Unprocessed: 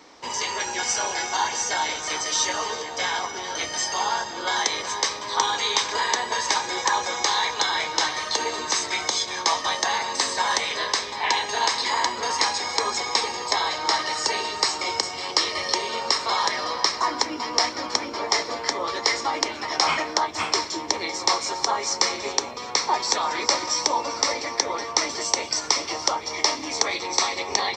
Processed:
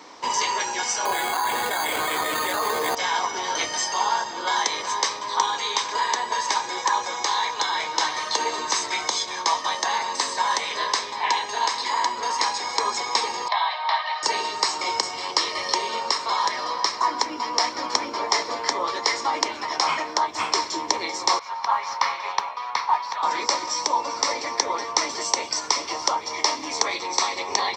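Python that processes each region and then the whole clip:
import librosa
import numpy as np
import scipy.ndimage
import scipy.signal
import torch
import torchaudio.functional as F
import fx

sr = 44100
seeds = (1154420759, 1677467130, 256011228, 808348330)

y = fx.chain(x, sr, fx.resample_bad(factor=8, down='filtered', up='hold'),
    fx.notch(hz=930.0, q=16.0),
    fx.env_flatten(amount_pct=100), at=(1.05, 2.95))
y = fx.chain(y, sr, fx.ellip_bandpass(low_hz=660.0, high_hz=3800.0, order=3, stop_db=40),
    fx.notch(hz=1400.0, q=6.8), at=(13.48, 14.23))
y = fx.chain(y, sr, fx.ladder_highpass(hz=690.0, resonance_pct=25),
    fx.mod_noise(seeds[0], snr_db=15),
    fx.air_absorb(metres=250.0), at=(21.39, 23.23))
y = fx.highpass(y, sr, hz=160.0, slope=6)
y = fx.peak_eq(y, sr, hz=1000.0, db=7.0, octaves=0.26)
y = fx.rider(y, sr, range_db=10, speed_s=0.5)
y = y * 10.0 ** (-1.5 / 20.0)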